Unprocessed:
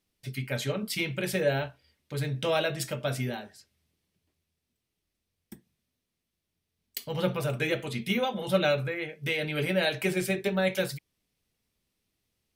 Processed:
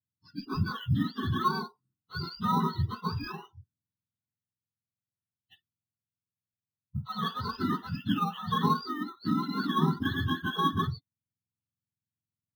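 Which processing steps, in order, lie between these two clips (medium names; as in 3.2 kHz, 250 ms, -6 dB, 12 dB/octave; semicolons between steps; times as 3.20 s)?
spectrum inverted on a logarithmic axis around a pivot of 790 Hz; treble shelf 5.2 kHz -8 dB; in parallel at -9.5 dB: sample-and-hold 9×; on the sum: spectral noise reduction 22 dB; static phaser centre 2.2 kHz, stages 6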